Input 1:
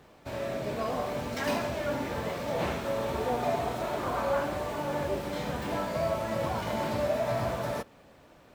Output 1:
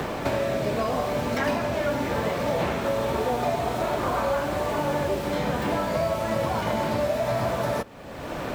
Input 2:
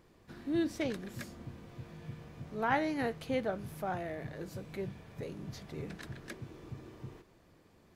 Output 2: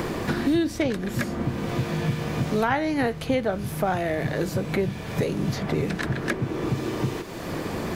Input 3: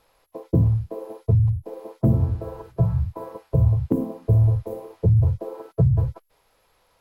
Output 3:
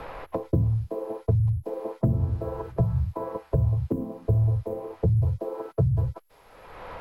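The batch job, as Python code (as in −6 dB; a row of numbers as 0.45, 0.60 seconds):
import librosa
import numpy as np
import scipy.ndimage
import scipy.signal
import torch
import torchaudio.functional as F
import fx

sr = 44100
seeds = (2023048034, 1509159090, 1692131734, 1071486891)

y = fx.band_squash(x, sr, depth_pct=100)
y = y * 10.0 ** (-26 / 20.0) / np.sqrt(np.mean(np.square(y)))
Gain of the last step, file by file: +5.0, +12.5, −4.0 decibels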